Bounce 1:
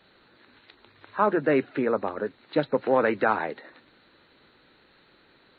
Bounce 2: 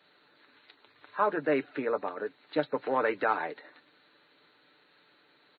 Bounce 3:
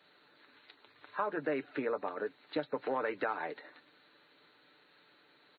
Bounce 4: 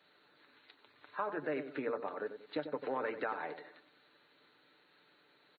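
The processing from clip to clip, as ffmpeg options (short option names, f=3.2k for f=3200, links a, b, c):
-af "highpass=f=380:p=1,aecho=1:1:6.8:0.46,volume=-4dB"
-af "acompressor=threshold=-29dB:ratio=6,volume=-1dB"
-filter_complex "[0:a]asplit=2[a][b];[b]adelay=93,lowpass=f=960:p=1,volume=-8dB,asplit=2[c][d];[d]adelay=93,lowpass=f=960:p=1,volume=0.38,asplit=2[e][f];[f]adelay=93,lowpass=f=960:p=1,volume=0.38,asplit=2[g][h];[h]adelay=93,lowpass=f=960:p=1,volume=0.38[i];[a][c][e][g][i]amix=inputs=5:normalize=0,volume=-3dB"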